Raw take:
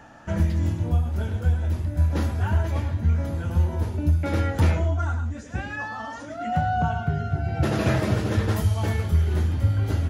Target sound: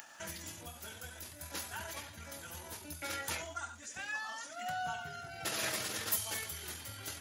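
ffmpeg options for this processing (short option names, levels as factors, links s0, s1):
-af "acompressor=mode=upward:threshold=0.01:ratio=2.5,atempo=1.4,aderivative,volume=2.11"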